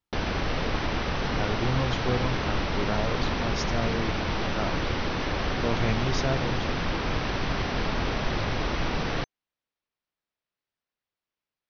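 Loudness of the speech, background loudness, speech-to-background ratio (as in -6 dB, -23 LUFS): -32.5 LUFS, -29.0 LUFS, -3.5 dB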